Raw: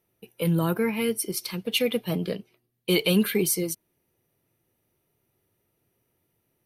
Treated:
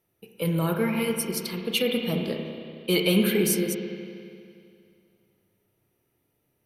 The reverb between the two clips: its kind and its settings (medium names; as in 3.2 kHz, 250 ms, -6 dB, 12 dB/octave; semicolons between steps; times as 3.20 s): spring tank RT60 2.4 s, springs 31/38 ms, chirp 35 ms, DRR 2.5 dB; trim -1 dB